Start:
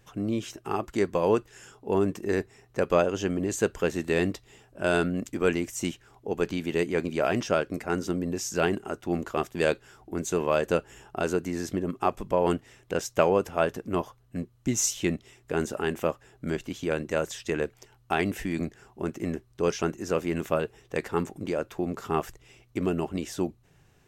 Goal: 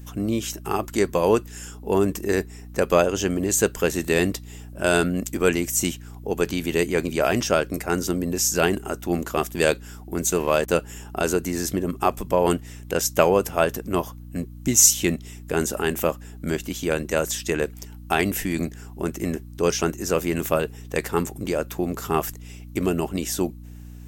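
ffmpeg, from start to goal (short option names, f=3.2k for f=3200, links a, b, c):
-filter_complex "[0:a]aemphasis=mode=production:type=50fm,asettb=1/sr,asplit=3[a][b][c];[a]atrim=end=10.274[d];[b]atrim=start=10.27:end=10.76,asetpts=PTS-STARTPTS,afade=t=in:d=0.004:c=qsin,afade=t=out:st=0.486:d=0.004:c=qsin,aeval=exprs='sgn(val(0))*max(abs(val(0))-0.00562,0)':c=same[e];[c]atrim=start=10.756[f];[d][e]acrossfade=d=0.004:c1=hsin:c2=qsin[g];[g][f]acrossfade=d=0.004:c1=qsin:c2=hsin,aeval=exprs='val(0)+0.00708*(sin(2*PI*60*n/s)+sin(2*PI*2*60*n/s)/2+sin(2*PI*3*60*n/s)/3+sin(2*PI*4*60*n/s)/4+sin(2*PI*5*60*n/s)/5)':c=same,volume=4.5dB"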